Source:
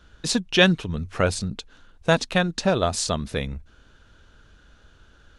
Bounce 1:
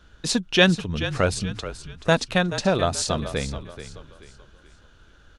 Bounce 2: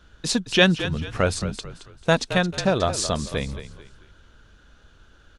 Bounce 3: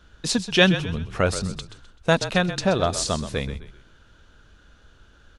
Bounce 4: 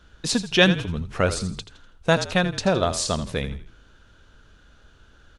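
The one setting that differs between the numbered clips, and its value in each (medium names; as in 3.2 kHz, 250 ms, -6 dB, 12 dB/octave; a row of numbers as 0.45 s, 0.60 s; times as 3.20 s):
frequency-shifting echo, time: 430 ms, 220 ms, 128 ms, 82 ms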